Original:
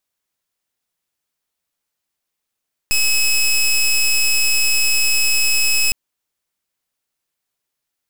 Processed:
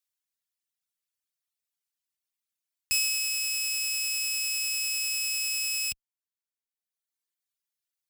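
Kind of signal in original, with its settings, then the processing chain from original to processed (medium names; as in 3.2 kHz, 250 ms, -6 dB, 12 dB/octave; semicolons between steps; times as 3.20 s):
pulse 2.57 kHz, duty 17% -15 dBFS 3.01 s
high-pass 51 Hz; reverb removal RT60 1.3 s; amplifier tone stack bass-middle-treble 5-5-5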